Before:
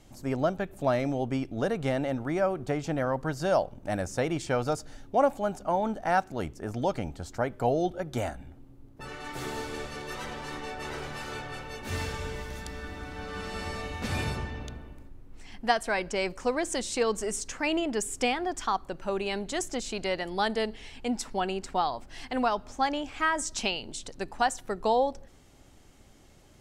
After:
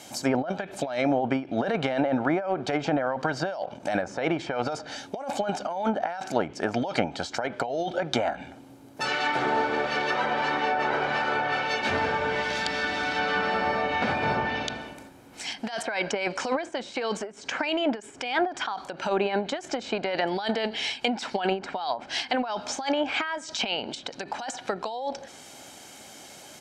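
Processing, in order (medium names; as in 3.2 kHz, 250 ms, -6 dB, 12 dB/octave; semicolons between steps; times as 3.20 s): high-pass 290 Hz 12 dB/octave; treble shelf 2.8 kHz +5.5 dB; comb 1.3 ms, depth 37%; compressor with a negative ratio -34 dBFS, ratio -1; low-pass that closes with the level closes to 1.4 kHz, closed at -28.5 dBFS; dynamic bell 4.2 kHz, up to +4 dB, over -55 dBFS, Q 0.79; endings held to a fixed fall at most 190 dB/s; trim +8.5 dB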